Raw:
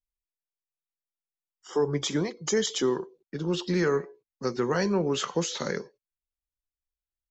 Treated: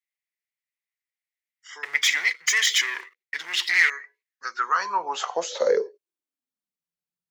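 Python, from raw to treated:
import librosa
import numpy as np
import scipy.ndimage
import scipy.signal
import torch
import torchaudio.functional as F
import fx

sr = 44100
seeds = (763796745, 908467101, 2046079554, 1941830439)

y = fx.leveller(x, sr, passes=3, at=(1.83, 3.9))
y = fx.filter_sweep_highpass(y, sr, from_hz=2000.0, to_hz=170.0, start_s=4.2, end_s=6.85, q=7.4)
y = y * librosa.db_to_amplitude(-1.0)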